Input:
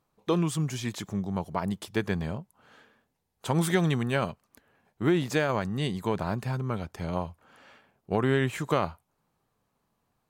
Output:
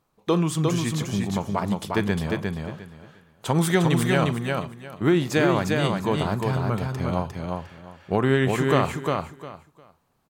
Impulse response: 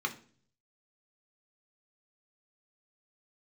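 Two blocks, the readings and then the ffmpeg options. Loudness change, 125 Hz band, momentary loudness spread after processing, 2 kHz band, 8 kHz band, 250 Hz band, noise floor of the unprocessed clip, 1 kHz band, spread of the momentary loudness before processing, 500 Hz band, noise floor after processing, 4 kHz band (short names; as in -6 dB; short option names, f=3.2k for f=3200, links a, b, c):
+5.0 dB, +5.5 dB, 13 LU, +5.5 dB, +5.5 dB, +6.0 dB, -78 dBFS, +6.0 dB, 9 LU, +6.0 dB, -66 dBFS, +6.0 dB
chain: -filter_complex "[0:a]aecho=1:1:354|708|1062:0.668|0.14|0.0295,asplit=2[a][b];[1:a]atrim=start_sample=2205,adelay=39[c];[b][c]afir=irnorm=-1:irlink=0,volume=-20dB[d];[a][d]amix=inputs=2:normalize=0,volume=4dB"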